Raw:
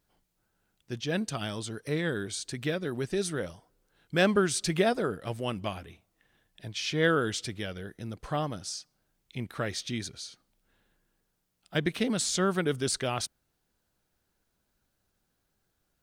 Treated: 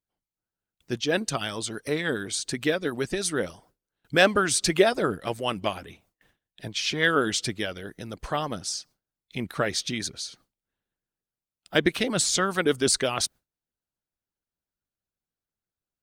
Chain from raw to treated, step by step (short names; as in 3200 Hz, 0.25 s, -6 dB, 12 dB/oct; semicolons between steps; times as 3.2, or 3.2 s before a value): gate with hold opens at -55 dBFS; harmonic-percussive split harmonic -11 dB; gain +8 dB